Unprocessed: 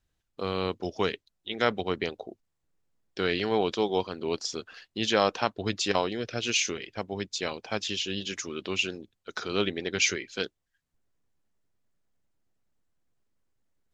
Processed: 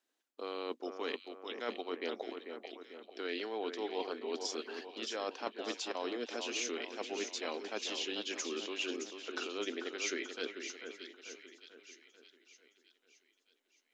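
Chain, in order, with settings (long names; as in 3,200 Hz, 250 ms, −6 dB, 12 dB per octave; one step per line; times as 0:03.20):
elliptic high-pass filter 250 Hz, stop band 40 dB
reversed playback
downward compressor 6 to 1, threshold −36 dBFS, peak gain reduction 16 dB
reversed playback
echo with a time of its own for lows and highs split 2,100 Hz, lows 442 ms, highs 617 ms, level −7 dB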